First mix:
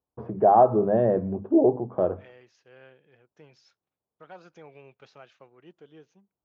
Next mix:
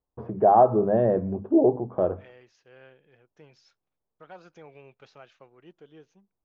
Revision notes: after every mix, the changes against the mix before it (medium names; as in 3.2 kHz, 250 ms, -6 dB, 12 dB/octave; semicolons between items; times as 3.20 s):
master: remove high-pass 75 Hz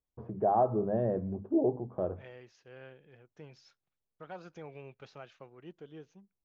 first voice -10.5 dB; master: add bass shelf 240 Hz +6.5 dB